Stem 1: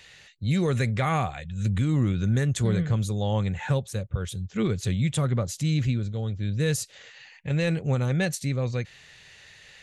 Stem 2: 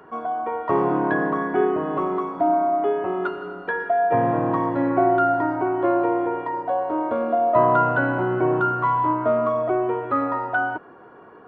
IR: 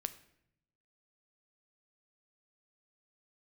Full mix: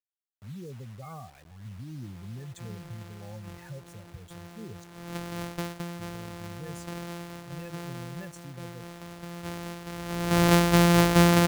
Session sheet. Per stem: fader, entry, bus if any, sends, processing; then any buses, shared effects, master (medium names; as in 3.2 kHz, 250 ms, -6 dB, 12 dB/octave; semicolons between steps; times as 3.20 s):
-17.0 dB, 0.00 s, muted 4.84–5.99 s, no send, high-pass 50 Hz 24 dB/octave; spectral gate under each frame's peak -15 dB strong
4.86 s -9.5 dB -> 5.23 s -2 dB, 1.90 s, no send, sorted samples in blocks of 256 samples; level rider gain up to 3.5 dB; auto duck -21 dB, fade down 0.55 s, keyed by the first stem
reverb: none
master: bit crusher 9-bit